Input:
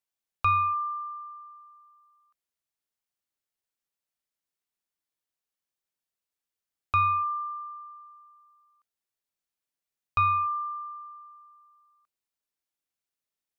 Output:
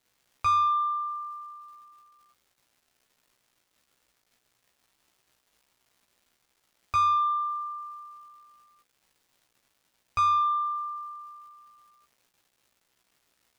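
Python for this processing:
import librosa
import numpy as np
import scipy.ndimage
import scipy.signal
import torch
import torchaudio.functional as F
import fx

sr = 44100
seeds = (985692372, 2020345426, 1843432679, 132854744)

y = fx.dmg_crackle(x, sr, seeds[0], per_s=410.0, level_db=-56.0)
y = 10.0 ** (-22.5 / 20.0) * np.tanh(y / 10.0 ** (-22.5 / 20.0))
y = fx.doubler(y, sr, ms=16.0, db=-4.0)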